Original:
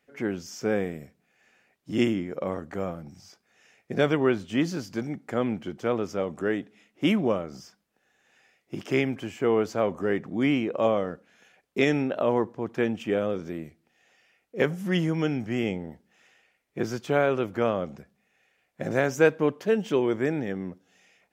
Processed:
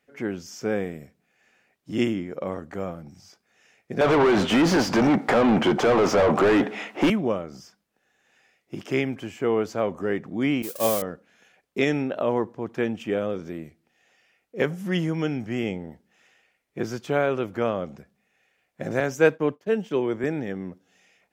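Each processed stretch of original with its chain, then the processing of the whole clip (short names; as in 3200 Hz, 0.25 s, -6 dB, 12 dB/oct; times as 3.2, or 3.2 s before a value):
4.01–7.1 bell 860 Hz +6 dB 1 oct + compressor 8:1, threshold -26 dBFS + overdrive pedal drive 37 dB, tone 1400 Hz, clips at -9.5 dBFS
10.62–11.02 switching spikes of -22 dBFS + expander -23 dBFS + high shelf 5200 Hz +11 dB
19–20.24 expander -35 dBFS + three-band expander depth 40%
whole clip: dry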